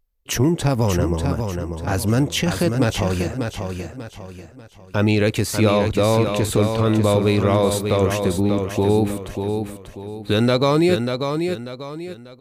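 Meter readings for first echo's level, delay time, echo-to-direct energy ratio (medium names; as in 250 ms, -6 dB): -6.0 dB, 591 ms, -5.5 dB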